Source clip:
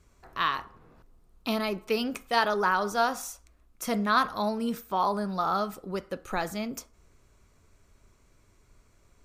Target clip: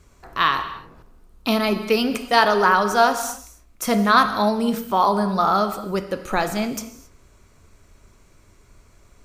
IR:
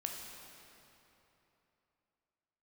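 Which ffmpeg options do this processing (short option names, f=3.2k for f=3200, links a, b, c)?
-filter_complex "[0:a]asplit=2[a][b];[1:a]atrim=start_sample=2205,afade=t=out:st=0.33:d=0.01,atrim=end_sample=14994[c];[b][c]afir=irnorm=-1:irlink=0,volume=0dB[d];[a][d]amix=inputs=2:normalize=0,volume=3.5dB"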